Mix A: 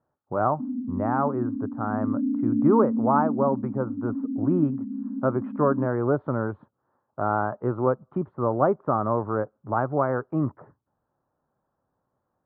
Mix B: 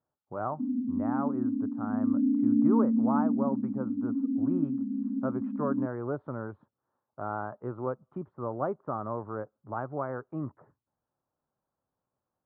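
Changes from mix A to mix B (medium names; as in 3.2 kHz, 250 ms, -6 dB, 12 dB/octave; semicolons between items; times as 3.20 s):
speech -10.0 dB; master: add treble shelf 6.6 kHz +11.5 dB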